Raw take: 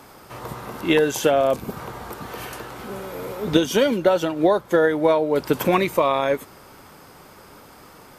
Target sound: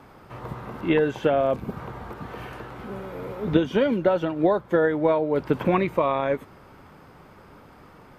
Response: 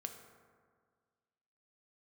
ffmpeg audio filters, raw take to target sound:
-filter_complex "[0:a]bass=frequency=250:gain=5,treble=frequency=4000:gain=-14,acrossover=split=4000[link_01][link_02];[link_02]acompressor=threshold=-51dB:ratio=4:attack=1:release=60[link_03];[link_01][link_03]amix=inputs=2:normalize=0,volume=-3.5dB"

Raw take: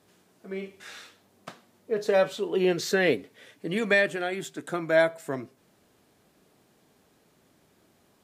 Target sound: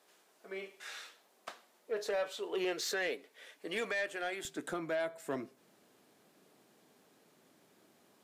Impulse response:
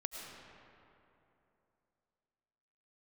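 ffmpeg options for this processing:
-af "asetnsamples=nb_out_samples=441:pad=0,asendcmd='4.45 highpass f 190',highpass=510,alimiter=limit=-21.5dB:level=0:latency=1:release=390,asoftclip=type=tanh:threshold=-25dB,volume=-2dB"

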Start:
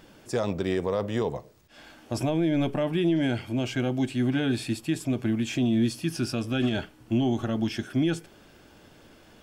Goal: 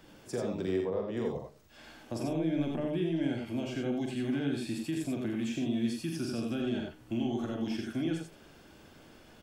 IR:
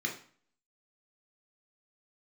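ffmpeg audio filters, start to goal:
-filter_complex "[0:a]asettb=1/sr,asplit=3[link_01][link_02][link_03];[link_01]atrim=end=0.764[link_04];[link_02]atrim=start=0.76:end=1.17,asetpts=PTS-STARTPTS,afade=type=in:duration=0.004:curve=qsin,afade=type=out:start_time=0.406:duration=0.004:curve=qsin,bass=frequency=250:gain=-4,treble=frequency=4000:gain=-12[link_05];[link_03]atrim=start=1.166[link_06];[link_04][link_05]acrossfade=duration=0.004:curve1=hsin:curve2=qsin[link_07];[link_07][link_06]acrossfade=duration=0.004:curve1=qsin:curve2=hsin,acrossover=split=180|530[link_08][link_09][link_10];[link_08]acompressor=threshold=-42dB:ratio=4[link_11];[link_09]acompressor=threshold=-28dB:ratio=4[link_12];[link_10]acompressor=threshold=-41dB:ratio=4[link_13];[link_11][link_12][link_13]amix=inputs=3:normalize=0,aecho=1:1:43|83|96:0.501|0.531|0.473,volume=-4.5dB"

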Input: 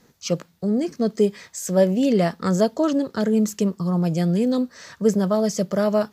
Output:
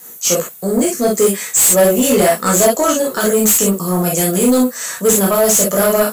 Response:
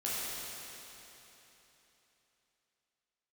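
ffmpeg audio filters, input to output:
-filter_complex "[1:a]atrim=start_sample=2205,atrim=end_sample=3087[link_01];[0:a][link_01]afir=irnorm=-1:irlink=0,aexciter=amount=7.5:drive=9.3:freq=7400,asplit=2[link_02][link_03];[link_03]highpass=frequency=720:poles=1,volume=20dB,asoftclip=type=tanh:threshold=-2dB[link_04];[link_02][link_04]amix=inputs=2:normalize=0,lowpass=frequency=7700:poles=1,volume=-6dB"

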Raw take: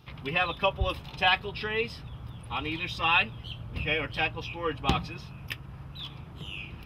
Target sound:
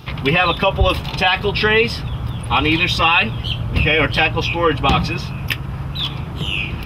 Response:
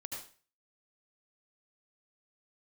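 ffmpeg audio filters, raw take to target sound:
-af "alimiter=level_in=21.5dB:limit=-1dB:release=50:level=0:latency=1,volume=-4dB"

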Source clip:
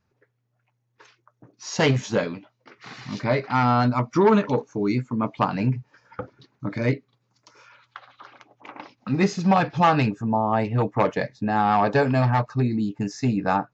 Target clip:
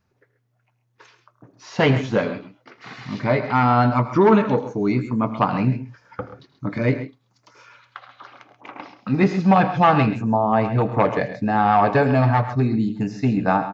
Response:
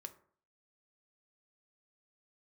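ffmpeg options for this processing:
-filter_complex "[0:a]acrossover=split=3700[link_01][link_02];[link_02]acompressor=threshold=-55dB:ratio=4:attack=1:release=60[link_03];[link_01][link_03]amix=inputs=2:normalize=0,aecho=1:1:79|107|133:0.133|0.158|0.224,asplit=2[link_04][link_05];[1:a]atrim=start_sample=2205,asetrate=83790,aresample=44100[link_06];[link_05][link_06]afir=irnorm=-1:irlink=0,volume=3dB[link_07];[link_04][link_07]amix=inputs=2:normalize=0"

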